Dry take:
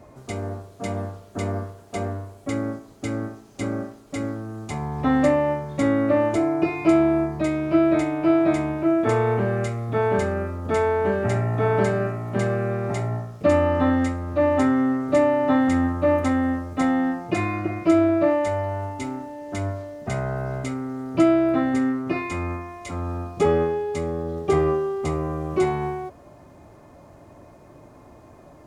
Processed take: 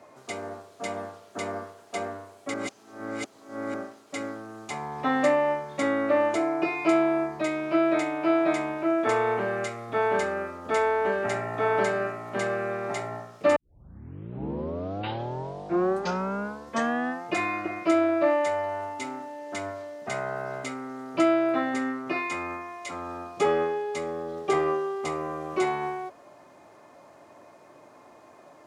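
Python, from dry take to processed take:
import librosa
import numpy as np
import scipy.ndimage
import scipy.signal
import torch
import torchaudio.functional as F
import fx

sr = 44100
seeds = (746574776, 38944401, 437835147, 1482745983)

y = fx.edit(x, sr, fx.reverse_span(start_s=2.54, length_s=1.2),
    fx.tape_start(start_s=13.56, length_s=3.68), tone=tone)
y = fx.weighting(y, sr, curve='A')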